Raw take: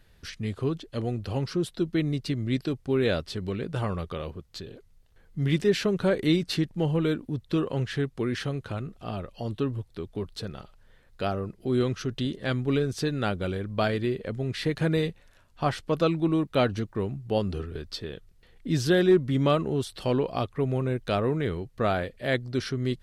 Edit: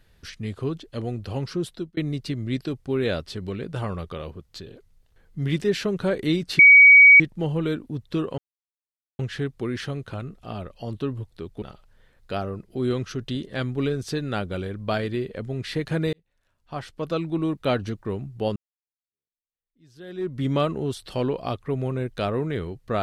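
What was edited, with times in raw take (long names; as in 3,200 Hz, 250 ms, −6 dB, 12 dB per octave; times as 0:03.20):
0:01.71–0:01.97: fade out
0:06.59: insert tone 2,260 Hz −7 dBFS 0.61 s
0:07.77: splice in silence 0.81 s
0:10.20–0:10.52: remove
0:15.03–0:16.44: fade in linear
0:17.46–0:19.31: fade in exponential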